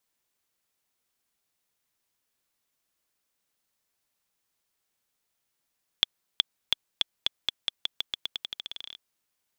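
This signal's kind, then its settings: bouncing ball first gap 0.37 s, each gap 0.88, 3.42 kHz, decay 15 ms -4.5 dBFS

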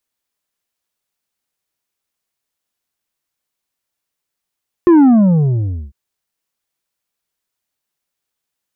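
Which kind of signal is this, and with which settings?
sub drop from 360 Hz, over 1.05 s, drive 6 dB, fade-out 0.93 s, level -5.5 dB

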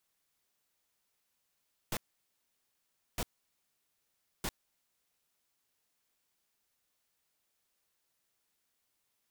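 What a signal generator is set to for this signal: noise bursts pink, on 0.05 s, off 1.21 s, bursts 3, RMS -34.5 dBFS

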